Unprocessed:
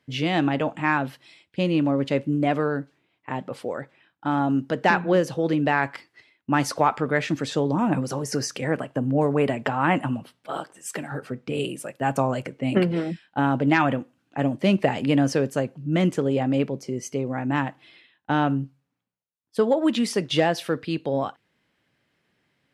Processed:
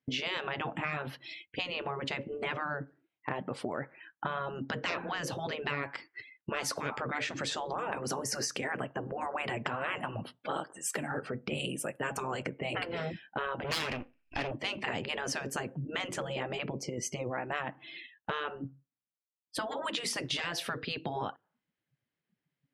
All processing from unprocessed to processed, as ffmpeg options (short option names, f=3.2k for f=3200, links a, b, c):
-filter_complex "[0:a]asettb=1/sr,asplit=3[a][b][c];[a]atrim=end=3.804[d];[b]atrim=start=3.8:end=4.27,asetpts=PTS-STARTPTS,afade=t=in:d=0.004:c=qsin,afade=t=out:st=0.466:d=0.004:c=qsin,lowpass=8.9k,equalizer=f=1.4k:w=0.66:g=4.5[e];[c]atrim=start=4.266[f];[d][e]acrossfade=d=0.004:c1=hsin:c2=qsin[g];[g][f]acrossfade=d=0.004:c1=qsin:c2=hsin,asettb=1/sr,asplit=3[h][i][j];[h]atrim=end=13.644[k];[i]atrim=start=13.64:end=14.51,asetpts=PTS-STARTPTS,afade=t=in:d=0.004:c=qsin,afade=t=out:st=0.866:d=0.004:c=qsin,lowpass=f=2.5k:t=q:w=6,aeval=exprs='max(val(0),0)':c=same[l];[j]atrim=start=14.506[m];[k][l]acrossfade=d=0.004:c1=hsin:c2=qsin[n];[n][m]acrossfade=d=0.004:c1=qsin:c2=hsin,afftfilt=real='re*lt(hypot(re,im),0.224)':imag='im*lt(hypot(re,im),0.224)':win_size=1024:overlap=0.75,afftdn=nr=28:nf=-55,acompressor=threshold=-44dB:ratio=3,volume=8.5dB"